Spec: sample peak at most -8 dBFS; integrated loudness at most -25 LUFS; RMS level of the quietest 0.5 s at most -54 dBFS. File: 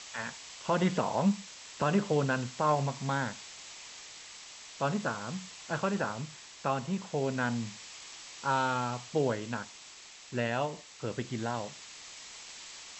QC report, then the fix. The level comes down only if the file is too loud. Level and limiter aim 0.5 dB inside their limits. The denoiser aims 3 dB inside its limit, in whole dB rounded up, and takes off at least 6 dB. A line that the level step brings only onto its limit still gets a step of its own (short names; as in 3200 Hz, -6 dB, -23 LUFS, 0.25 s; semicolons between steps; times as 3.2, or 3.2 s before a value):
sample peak -14.5 dBFS: OK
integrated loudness -32.5 LUFS: OK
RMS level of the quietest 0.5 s -51 dBFS: fail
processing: denoiser 6 dB, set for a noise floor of -51 dBFS